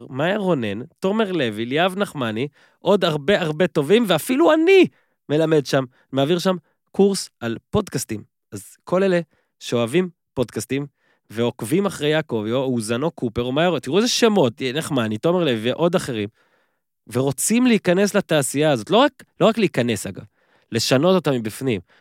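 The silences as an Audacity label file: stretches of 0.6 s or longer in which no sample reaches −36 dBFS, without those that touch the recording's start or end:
16.280000	17.090000	silence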